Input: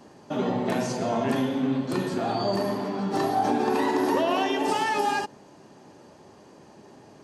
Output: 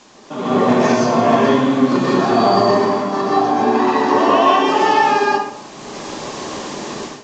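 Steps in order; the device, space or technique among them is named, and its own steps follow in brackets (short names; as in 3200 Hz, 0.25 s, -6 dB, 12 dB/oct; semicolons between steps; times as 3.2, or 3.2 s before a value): filmed off a television (BPF 150–7900 Hz; bell 1100 Hz +9 dB 0.35 oct; reverb RT60 0.65 s, pre-delay 0.116 s, DRR -4.5 dB; white noise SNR 25 dB; AGC gain up to 16.5 dB; gain -1 dB; AAC 32 kbps 16000 Hz)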